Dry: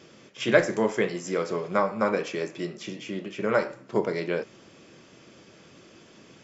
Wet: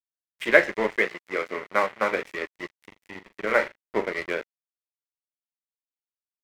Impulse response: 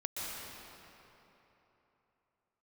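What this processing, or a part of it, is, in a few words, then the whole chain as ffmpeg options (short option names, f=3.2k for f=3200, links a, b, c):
pocket radio on a weak battery: -filter_complex "[0:a]highpass=290,lowpass=3.8k,aeval=exprs='sgn(val(0))*max(abs(val(0))-0.02,0)':c=same,equalizer=f=2k:t=o:w=0.49:g=11,asettb=1/sr,asplit=3[a][b][c];[a]atrim=end=0.964[d];[b]atrim=start=0.96:end=2.16,asetpts=PTS-STARTPTS,afade=t=in:d=0.004:c=qsin,afade=t=out:st=1.196:d=0.004:c=qsin,highpass=f=160:p=1[e];[c]atrim=start=2.156[f];[d][e]acrossfade=d=0.004:c1=hsin:c2=qsin[g];[g][f]acrossfade=d=0.004:c1=qsin:c2=hsin,asplit=3[h][i][j];[h]afade=t=out:st=2.9:d=0.02[k];[i]asplit=2[l][m];[m]adelay=41,volume=-11.5dB[n];[l][n]amix=inputs=2:normalize=0,afade=t=in:st=2.9:d=0.02,afade=t=out:st=4.09:d=0.02[o];[j]afade=t=in:st=4.09:d=0.02[p];[k][o][p]amix=inputs=3:normalize=0,volume=2dB"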